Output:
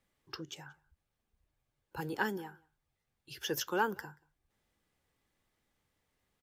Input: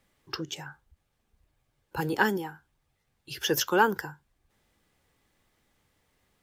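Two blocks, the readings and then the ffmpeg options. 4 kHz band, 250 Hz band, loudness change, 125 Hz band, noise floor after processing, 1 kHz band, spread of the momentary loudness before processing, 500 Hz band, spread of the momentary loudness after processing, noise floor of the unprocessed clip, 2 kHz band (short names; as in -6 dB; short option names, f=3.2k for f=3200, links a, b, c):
-9.0 dB, -9.0 dB, -8.5 dB, -9.0 dB, -85 dBFS, -9.0 dB, 18 LU, -9.0 dB, 18 LU, -76 dBFS, -9.0 dB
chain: -filter_complex "[0:a]asplit=2[a][b];[b]adelay=180.8,volume=-26dB,highshelf=f=4k:g=-4.07[c];[a][c]amix=inputs=2:normalize=0,volume=-9dB"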